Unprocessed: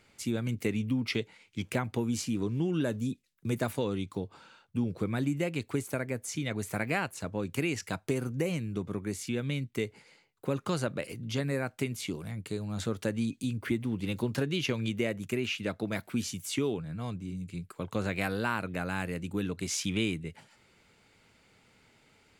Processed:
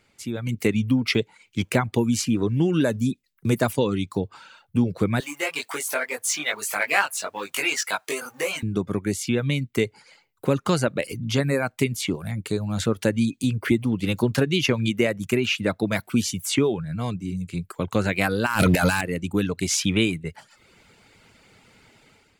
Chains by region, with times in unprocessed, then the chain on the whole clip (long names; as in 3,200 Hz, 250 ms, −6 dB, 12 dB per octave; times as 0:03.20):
0:05.20–0:08.63: mu-law and A-law mismatch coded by mu + high-pass filter 790 Hz + double-tracking delay 20 ms −2 dB
0:18.46–0:19.01: high-shelf EQ 3,400 Hz +10 dB + compressor whose output falls as the input rises −36 dBFS, ratio −0.5 + leveller curve on the samples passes 3
whole clip: reverb reduction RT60 0.59 s; automatic gain control gain up to 10 dB